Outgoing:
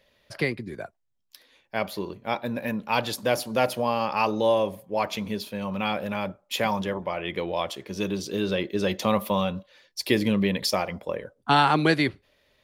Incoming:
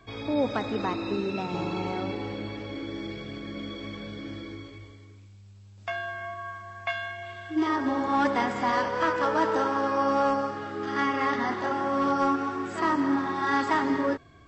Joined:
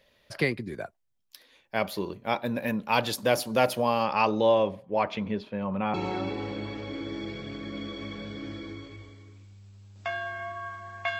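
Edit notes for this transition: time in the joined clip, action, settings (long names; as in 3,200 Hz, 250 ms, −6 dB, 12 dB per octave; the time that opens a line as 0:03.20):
outgoing
0:04.03–0:05.94: low-pass filter 6,600 Hz → 1,400 Hz
0:05.94: continue with incoming from 0:01.76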